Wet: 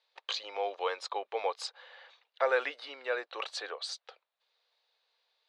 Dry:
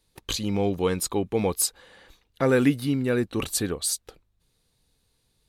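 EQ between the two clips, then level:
Butterworth high-pass 550 Hz 36 dB per octave
low-pass filter 4,400 Hz 24 dB per octave
dynamic equaliser 2,800 Hz, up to −4 dB, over −44 dBFS, Q 0.89
0.0 dB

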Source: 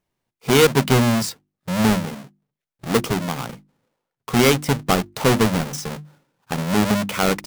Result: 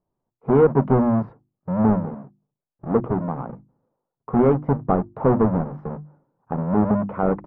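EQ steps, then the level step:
low-pass filter 1,100 Hz 24 dB per octave
mains-hum notches 60/120 Hz
0.0 dB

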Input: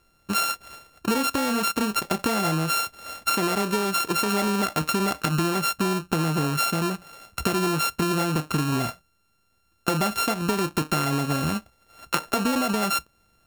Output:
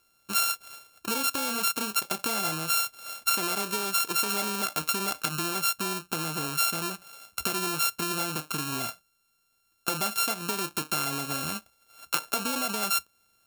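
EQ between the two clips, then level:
Butterworth band-reject 1,900 Hz, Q 7.1
spectral tilt +2.5 dB per octave
−6.0 dB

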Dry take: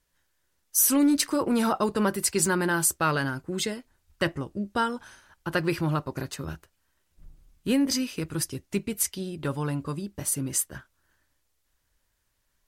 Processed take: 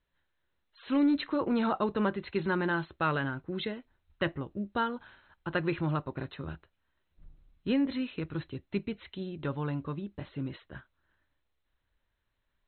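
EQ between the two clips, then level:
linear-phase brick-wall low-pass 4,200 Hz
high-frequency loss of the air 67 metres
−4.0 dB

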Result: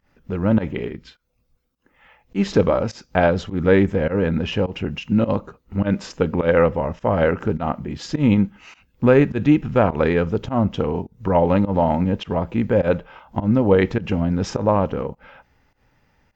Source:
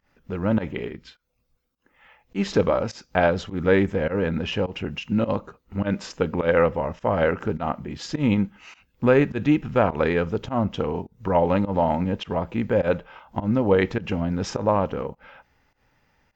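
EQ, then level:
low-shelf EQ 460 Hz +4.5 dB
+1.0 dB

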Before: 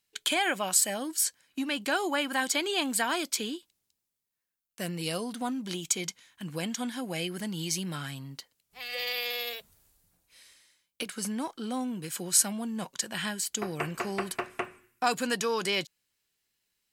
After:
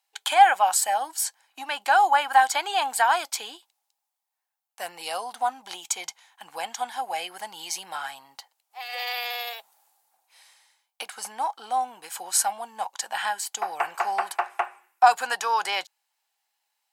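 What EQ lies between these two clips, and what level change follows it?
dynamic equaliser 1,500 Hz, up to +5 dB, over −44 dBFS, Q 2.6
high-pass with resonance 810 Hz, resonance Q 8.3
0.0 dB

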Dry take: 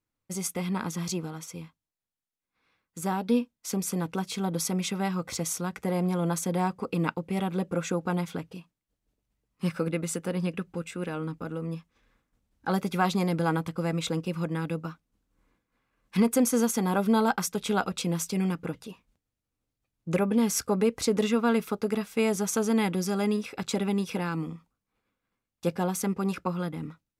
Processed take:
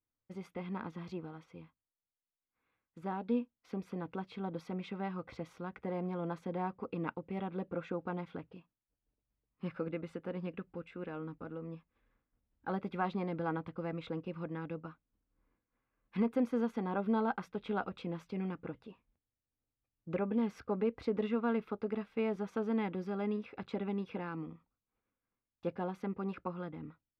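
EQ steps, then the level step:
dynamic equaliser 8,600 Hz, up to −4 dB, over −46 dBFS, Q 0.72
high-frequency loss of the air 390 metres
parametric band 170 Hz −5.5 dB 0.37 octaves
−7.0 dB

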